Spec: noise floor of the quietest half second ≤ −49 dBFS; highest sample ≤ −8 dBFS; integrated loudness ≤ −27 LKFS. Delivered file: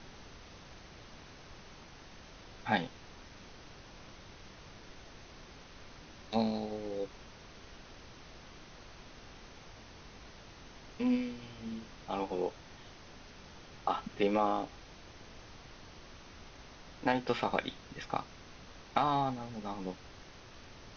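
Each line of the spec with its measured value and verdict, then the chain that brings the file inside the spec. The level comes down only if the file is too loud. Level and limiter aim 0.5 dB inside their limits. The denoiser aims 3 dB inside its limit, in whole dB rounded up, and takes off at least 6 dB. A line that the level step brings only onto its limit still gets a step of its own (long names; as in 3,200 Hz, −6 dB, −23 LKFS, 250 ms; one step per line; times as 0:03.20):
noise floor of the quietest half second −52 dBFS: in spec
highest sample −13.0 dBFS: in spec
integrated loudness −35.5 LKFS: in spec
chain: no processing needed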